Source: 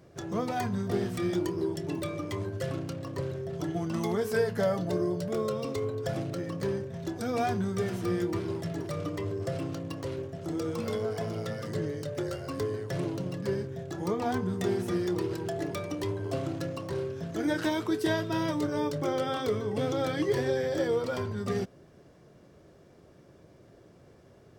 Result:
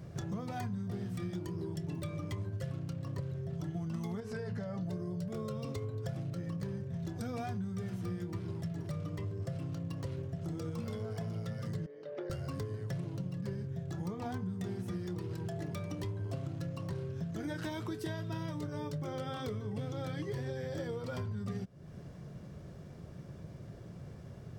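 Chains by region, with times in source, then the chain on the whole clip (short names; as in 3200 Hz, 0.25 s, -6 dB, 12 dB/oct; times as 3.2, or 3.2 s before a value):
4.2–4.83 LPF 6400 Hz + notch 3300 Hz, Q 13 + compressor 3:1, threshold -31 dBFS
11.86–12.3 ladder high-pass 320 Hz, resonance 35% + air absorption 270 m
whole clip: resonant low shelf 230 Hz +8 dB, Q 1.5; compressor, threshold -39 dBFS; gain +2.5 dB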